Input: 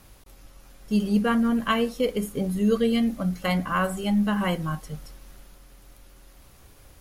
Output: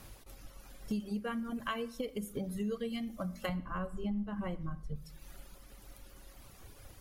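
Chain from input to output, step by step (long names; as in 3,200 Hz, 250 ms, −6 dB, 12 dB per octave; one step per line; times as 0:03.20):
reverb reduction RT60 0.98 s
0:03.49–0:04.96: spectral tilt −3.5 dB per octave
downward compressor 12 to 1, threshold −34 dBFS, peak gain reduction 23 dB
convolution reverb RT60 0.90 s, pre-delay 9 ms, DRR 13 dB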